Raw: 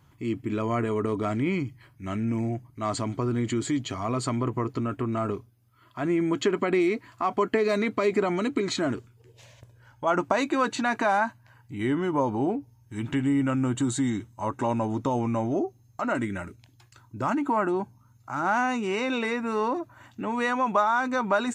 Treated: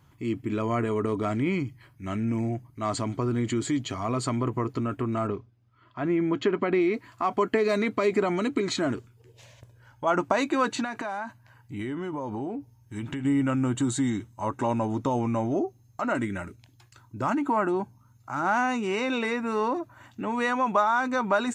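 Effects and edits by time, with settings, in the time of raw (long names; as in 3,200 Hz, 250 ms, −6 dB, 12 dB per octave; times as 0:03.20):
0:05.27–0:06.94: high-frequency loss of the air 150 metres
0:10.84–0:13.25: downward compressor, threshold −29 dBFS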